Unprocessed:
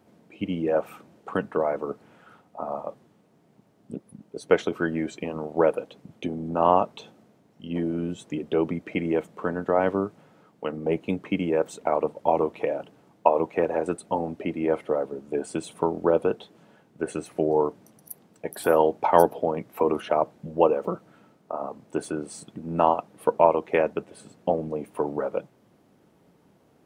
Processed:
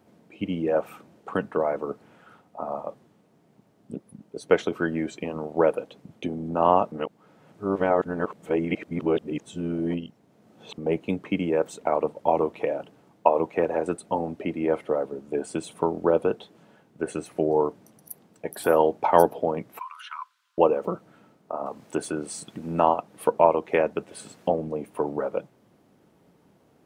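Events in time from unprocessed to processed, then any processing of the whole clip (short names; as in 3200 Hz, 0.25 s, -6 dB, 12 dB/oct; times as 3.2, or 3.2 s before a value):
6.92–10.78 reverse
19.79–20.58 rippled Chebyshev high-pass 980 Hz, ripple 6 dB
21.66–24.52 mismatched tape noise reduction encoder only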